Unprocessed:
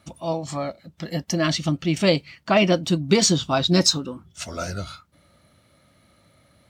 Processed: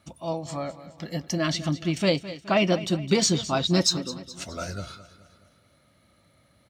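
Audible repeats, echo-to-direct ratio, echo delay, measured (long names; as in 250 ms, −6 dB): 4, −14.0 dB, 211 ms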